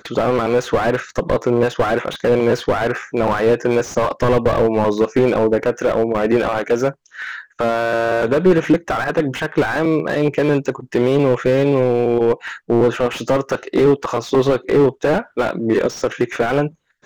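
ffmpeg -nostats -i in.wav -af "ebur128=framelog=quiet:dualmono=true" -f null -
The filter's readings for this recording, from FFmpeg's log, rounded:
Integrated loudness:
  I:         -14.6 LUFS
  Threshold: -24.7 LUFS
Loudness range:
  LRA:         1.3 LU
  Threshold: -34.5 LUFS
  LRA low:   -15.3 LUFS
  LRA high:  -13.9 LUFS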